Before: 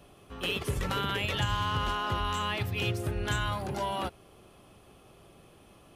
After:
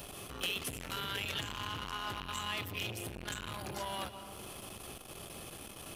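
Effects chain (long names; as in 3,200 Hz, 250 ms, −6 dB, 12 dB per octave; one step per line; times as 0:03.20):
loose part that buzzes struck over −32 dBFS, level −30 dBFS
high-shelf EQ 12,000 Hz +6.5 dB
downward compressor 3 to 1, threshold −51 dBFS, peak gain reduction 19 dB
high-shelf EQ 2,300 Hz +10.5 dB
on a send at −10.5 dB: convolution reverb RT60 2.0 s, pre-delay 95 ms
on the sum: saturating transformer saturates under 1,700 Hz
level +8 dB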